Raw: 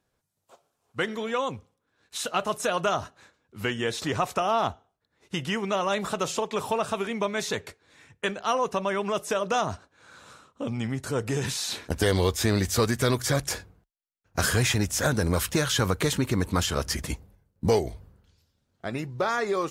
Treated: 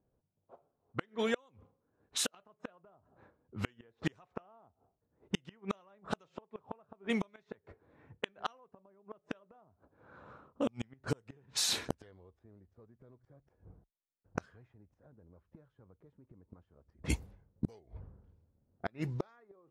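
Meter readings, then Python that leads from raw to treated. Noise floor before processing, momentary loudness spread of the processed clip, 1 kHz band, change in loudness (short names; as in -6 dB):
-78 dBFS, 18 LU, -18.5 dB, -12.0 dB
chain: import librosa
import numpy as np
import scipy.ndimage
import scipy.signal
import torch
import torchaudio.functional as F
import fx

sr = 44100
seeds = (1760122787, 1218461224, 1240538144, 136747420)

y = fx.gate_flip(x, sr, shuts_db=-19.0, range_db=-35)
y = fx.env_lowpass(y, sr, base_hz=590.0, full_db=-31.5)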